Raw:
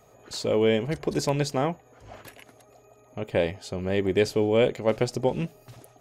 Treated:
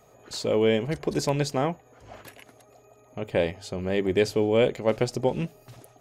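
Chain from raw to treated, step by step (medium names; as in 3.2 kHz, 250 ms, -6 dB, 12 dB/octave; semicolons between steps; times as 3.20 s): hum notches 50/100 Hz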